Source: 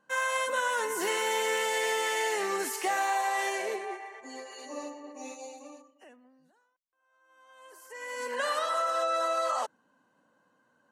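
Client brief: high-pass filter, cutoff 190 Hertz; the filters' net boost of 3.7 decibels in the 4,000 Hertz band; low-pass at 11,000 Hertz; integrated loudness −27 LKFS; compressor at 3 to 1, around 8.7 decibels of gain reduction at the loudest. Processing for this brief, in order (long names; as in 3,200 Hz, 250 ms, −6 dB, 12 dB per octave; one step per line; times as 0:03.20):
high-pass filter 190 Hz
low-pass filter 11,000 Hz
parametric band 4,000 Hz +5 dB
downward compressor 3 to 1, threshold −37 dBFS
level +10.5 dB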